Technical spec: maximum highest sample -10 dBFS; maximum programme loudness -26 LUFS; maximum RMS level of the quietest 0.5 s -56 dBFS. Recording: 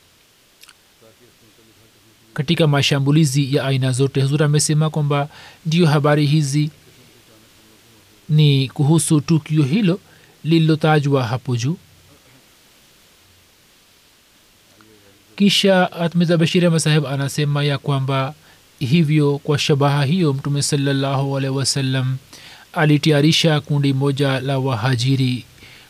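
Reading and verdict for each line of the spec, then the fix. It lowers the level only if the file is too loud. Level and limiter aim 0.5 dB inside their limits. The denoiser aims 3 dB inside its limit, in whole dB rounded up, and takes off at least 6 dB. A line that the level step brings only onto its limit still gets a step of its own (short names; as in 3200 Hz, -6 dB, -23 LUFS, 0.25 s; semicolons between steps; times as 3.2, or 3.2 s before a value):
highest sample -5.0 dBFS: fail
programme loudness -17.5 LUFS: fail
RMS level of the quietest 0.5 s -54 dBFS: fail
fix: gain -9 dB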